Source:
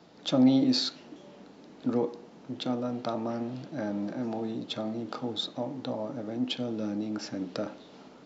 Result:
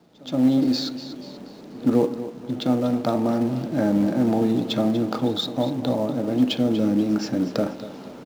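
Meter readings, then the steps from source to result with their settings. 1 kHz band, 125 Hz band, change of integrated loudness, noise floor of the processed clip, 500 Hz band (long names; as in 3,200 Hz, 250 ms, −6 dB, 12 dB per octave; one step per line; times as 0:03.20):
+7.5 dB, +10.5 dB, +8.0 dB, −42 dBFS, +9.0 dB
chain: in parallel at −6 dB: log-companded quantiser 4 bits
on the sum: tilt shelving filter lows +3.5 dB, about 640 Hz
on a send: repeating echo 241 ms, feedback 38%, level −13.5 dB
on the sum: automatic gain control gain up to 14 dB
echo ahead of the sound 124 ms −21 dB
level −6.5 dB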